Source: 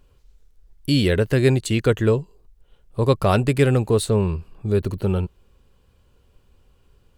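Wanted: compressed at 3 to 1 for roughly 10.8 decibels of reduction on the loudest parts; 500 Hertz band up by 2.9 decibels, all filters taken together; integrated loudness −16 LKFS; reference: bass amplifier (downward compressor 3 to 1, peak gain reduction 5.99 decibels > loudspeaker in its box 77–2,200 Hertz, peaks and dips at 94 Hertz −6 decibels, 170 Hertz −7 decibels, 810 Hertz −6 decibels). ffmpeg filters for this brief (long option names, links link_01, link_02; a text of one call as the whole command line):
ffmpeg -i in.wav -af "equalizer=frequency=500:width_type=o:gain=4,acompressor=threshold=-25dB:ratio=3,acompressor=threshold=-27dB:ratio=3,highpass=frequency=77:width=0.5412,highpass=frequency=77:width=1.3066,equalizer=frequency=94:width_type=q:width=4:gain=-6,equalizer=frequency=170:width_type=q:width=4:gain=-7,equalizer=frequency=810:width_type=q:width=4:gain=-6,lowpass=frequency=2200:width=0.5412,lowpass=frequency=2200:width=1.3066,volume=18dB" out.wav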